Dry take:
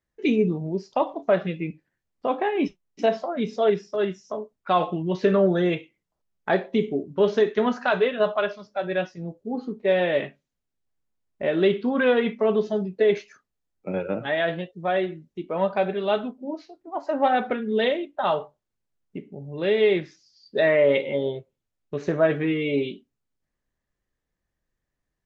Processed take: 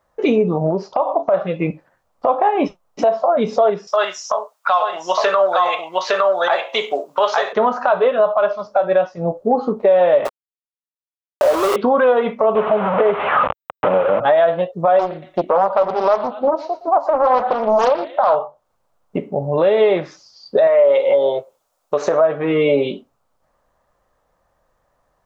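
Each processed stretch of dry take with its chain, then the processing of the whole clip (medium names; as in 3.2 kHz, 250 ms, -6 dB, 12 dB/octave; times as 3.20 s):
0.70–1.34 s: distance through air 99 m + compression 2.5:1, threshold -29 dBFS
3.87–7.53 s: high-pass 890 Hz + treble shelf 2.2 kHz +12 dB + delay 861 ms -3.5 dB
10.25–11.76 s: steep high-pass 250 Hz 72 dB/octave + compression 8:1, threshold -31 dBFS + companded quantiser 2-bit
12.55–14.20 s: one-bit delta coder 16 kbps, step -26 dBFS + high-pass 83 Hz
14.99–18.36 s: thinning echo 116 ms, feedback 39%, high-pass 1 kHz, level -14 dB + loudspeaker Doppler distortion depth 0.78 ms
20.67–22.21 s: tone controls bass -13 dB, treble +9 dB + compression 2:1, threshold -23 dBFS
whole clip: high-order bell 820 Hz +15 dB; compression 4:1, threshold -25 dBFS; loudness maximiser +17 dB; trim -5 dB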